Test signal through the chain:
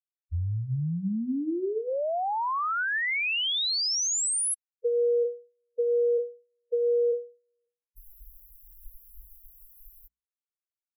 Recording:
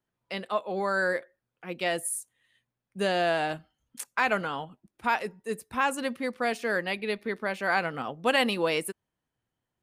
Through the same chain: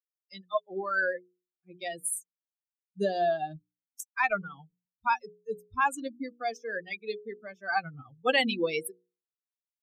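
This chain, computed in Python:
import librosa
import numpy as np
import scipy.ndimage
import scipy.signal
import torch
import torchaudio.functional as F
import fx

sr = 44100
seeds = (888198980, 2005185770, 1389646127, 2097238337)

y = fx.bin_expand(x, sr, power=3.0)
y = fx.hum_notches(y, sr, base_hz=60, count=8)
y = F.gain(torch.from_numpy(y), 4.0).numpy()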